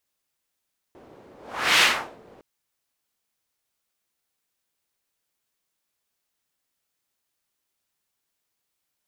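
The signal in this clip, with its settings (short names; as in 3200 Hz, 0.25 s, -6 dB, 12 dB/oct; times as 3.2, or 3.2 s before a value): whoosh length 1.46 s, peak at 0.85, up 0.46 s, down 0.41 s, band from 430 Hz, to 2700 Hz, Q 1.3, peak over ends 32.5 dB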